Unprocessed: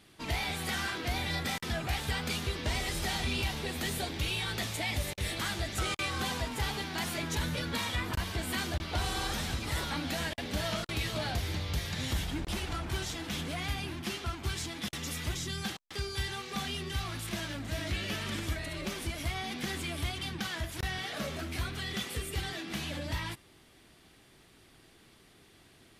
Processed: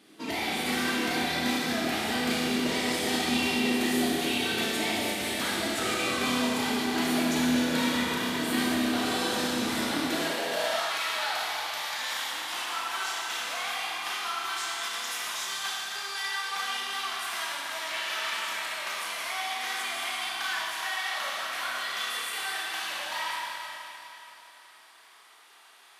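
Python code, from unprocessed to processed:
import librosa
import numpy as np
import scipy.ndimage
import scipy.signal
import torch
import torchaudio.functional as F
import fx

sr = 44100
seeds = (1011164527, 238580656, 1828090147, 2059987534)

y = fx.rev_schroeder(x, sr, rt60_s=3.3, comb_ms=25, drr_db=-4.0)
y = fx.filter_sweep_highpass(y, sr, from_hz=270.0, to_hz=980.0, start_s=10.06, end_s=10.98, q=2.1)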